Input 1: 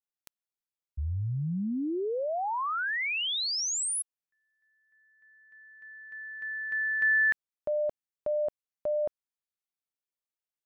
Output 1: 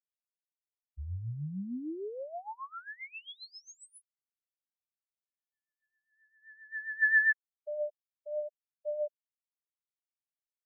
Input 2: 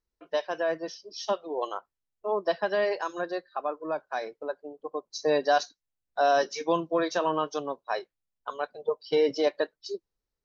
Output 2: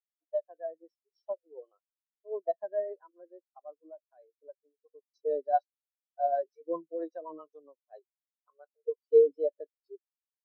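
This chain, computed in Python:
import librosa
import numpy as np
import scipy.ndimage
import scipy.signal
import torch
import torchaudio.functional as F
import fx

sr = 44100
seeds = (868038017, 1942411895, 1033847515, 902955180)

y = fx.rotary(x, sr, hz=7.5)
y = fx.spectral_expand(y, sr, expansion=2.5)
y = y * 10.0 ** (2.5 / 20.0)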